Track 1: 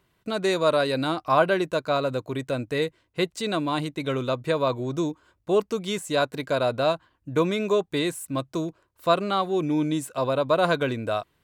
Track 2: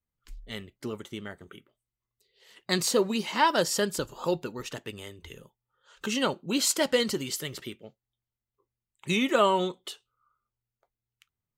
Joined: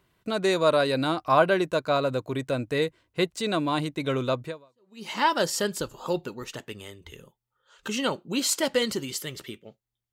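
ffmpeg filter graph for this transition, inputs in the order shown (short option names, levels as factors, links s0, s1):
-filter_complex "[0:a]apad=whole_dur=10.12,atrim=end=10.12,atrim=end=5.08,asetpts=PTS-STARTPTS[s0];[1:a]atrim=start=2.62:end=8.3,asetpts=PTS-STARTPTS[s1];[s0][s1]acrossfade=d=0.64:c1=exp:c2=exp"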